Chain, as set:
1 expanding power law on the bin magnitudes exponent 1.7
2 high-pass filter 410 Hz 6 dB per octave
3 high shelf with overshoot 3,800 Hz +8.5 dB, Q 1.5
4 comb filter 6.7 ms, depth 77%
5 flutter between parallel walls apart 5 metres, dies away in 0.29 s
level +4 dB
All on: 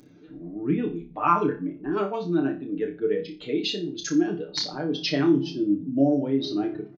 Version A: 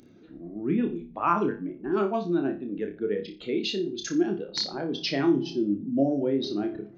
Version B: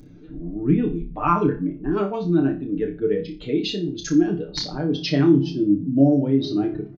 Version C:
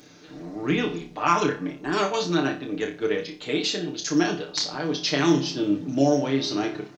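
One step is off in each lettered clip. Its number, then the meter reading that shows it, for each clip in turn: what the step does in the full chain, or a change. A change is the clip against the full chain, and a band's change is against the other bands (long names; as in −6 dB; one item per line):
4, 125 Hz band −2.0 dB
2, 125 Hz band +8.5 dB
1, 2 kHz band +6.0 dB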